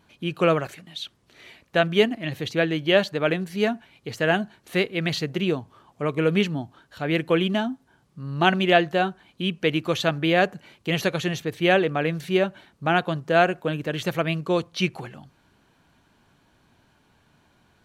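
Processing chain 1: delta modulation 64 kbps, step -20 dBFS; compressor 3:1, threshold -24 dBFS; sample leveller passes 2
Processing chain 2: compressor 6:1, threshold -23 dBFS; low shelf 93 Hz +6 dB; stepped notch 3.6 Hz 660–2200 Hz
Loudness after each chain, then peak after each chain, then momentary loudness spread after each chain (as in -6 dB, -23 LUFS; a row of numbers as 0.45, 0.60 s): -19.5, -30.0 LUFS; -11.0, -13.5 dBFS; 2, 9 LU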